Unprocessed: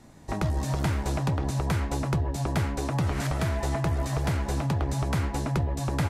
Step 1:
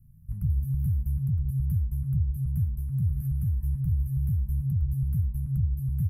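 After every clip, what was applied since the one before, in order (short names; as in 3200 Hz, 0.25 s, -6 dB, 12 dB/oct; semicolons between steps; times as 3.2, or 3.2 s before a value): inverse Chebyshev band-stop 290–7700 Hz, stop band 40 dB; gain +2.5 dB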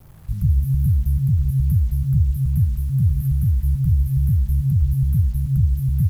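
bit-crush 10-bit; gain +8.5 dB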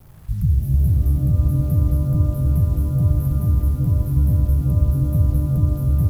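shimmer reverb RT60 3.2 s, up +12 st, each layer -8 dB, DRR 6 dB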